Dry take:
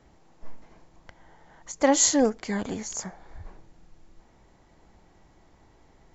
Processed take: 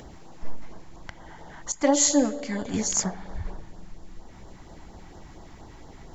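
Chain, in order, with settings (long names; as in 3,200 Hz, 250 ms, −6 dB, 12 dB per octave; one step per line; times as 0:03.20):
0:01.72–0:02.74: tuned comb filter 290 Hz, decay 0.62 s, mix 70%
spring reverb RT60 2.9 s, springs 43 ms, chirp 60 ms, DRR 14 dB
in parallel at −1 dB: upward compression, threshold −42 dBFS
on the sum: auto-filter notch sine 4.3 Hz 450–2,500 Hz
level +3.5 dB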